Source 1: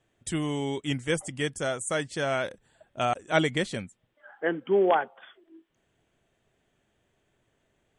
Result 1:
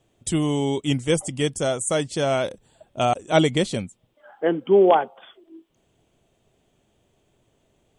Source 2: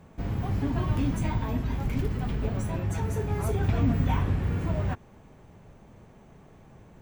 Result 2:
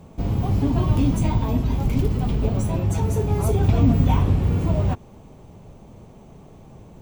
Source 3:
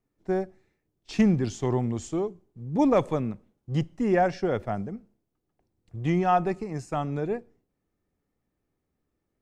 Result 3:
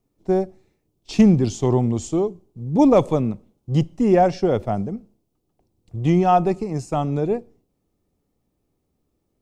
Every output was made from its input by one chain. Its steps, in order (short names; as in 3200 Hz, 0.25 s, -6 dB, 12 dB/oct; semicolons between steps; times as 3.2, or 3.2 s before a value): bell 1700 Hz -10.5 dB 0.86 oct; gain +7.5 dB